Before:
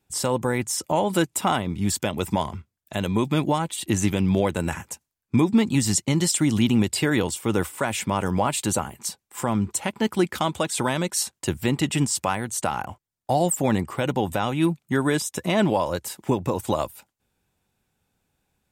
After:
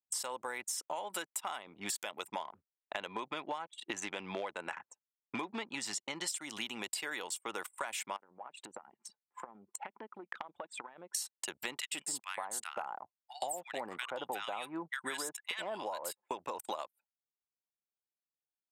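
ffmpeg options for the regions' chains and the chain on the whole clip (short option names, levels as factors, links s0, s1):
-filter_complex "[0:a]asettb=1/sr,asplit=3[s0][s1][s2];[s0]atrim=end=2.394[s3];[s1]atrim=start=2.39:end=6.28,asetpts=PTS-STARTPTS,afade=t=in:d=0.004:c=qsin,afade=t=out:st=3.886:d=0.004:c=qsin,aemphasis=mode=reproduction:type=50fm,asoftclip=type=hard:threshold=0.282[s4];[s2]atrim=start=6.276[s5];[s3][s4]acrossfade=d=0.004:c1=hsin:c2=qsin[s6];[s6][s5]acrossfade=d=0.004:c1=qsin:c2=hsin,asettb=1/sr,asplit=3[s7][s8][s9];[s7]atrim=end=8.164[s10];[s8]atrim=start=8.16:end=11.15,asetpts=PTS-STARTPTS,afade=t=in:d=0.004:c=qsin,afade=t=out:st=2.986:d=0.004:c=qsin,highpass=f=160:p=1,bass=f=250:g=5,treble=f=4000:g=-10,acompressor=threshold=0.0224:ratio=12:attack=3.2:release=140:knee=1:detection=peak[s11];[s9]atrim=start=11.146[s12];[s10][s11]acrossfade=d=0.004:c1=hsin:c2=qsin[s13];[s13][s12]acrossfade=d=0.004:c1=qsin:c2=hsin,asettb=1/sr,asplit=3[s14][s15][s16];[s14]atrim=end=11.804[s17];[s15]atrim=start=11.8:end=16.31,asetpts=PTS-STARTPTS,afade=t=in:d=0.004:c=qsin,afade=t=out:st=4.506:d=0.004:c=qsin,bandreject=f=5900:w=5.6,acrossover=split=1300[s18][s19];[s18]adelay=130[s20];[s20][s19]amix=inputs=2:normalize=0,atrim=end_sample=198891[s21];[s16]atrim=start=16.306[s22];[s17][s21]acrossfade=d=0.004:c1=hsin:c2=qsin[s23];[s23][s22]acrossfade=d=0.004:c1=qsin:c2=hsin,anlmdn=10,highpass=810,acompressor=threshold=0.01:ratio=12,volume=1.68"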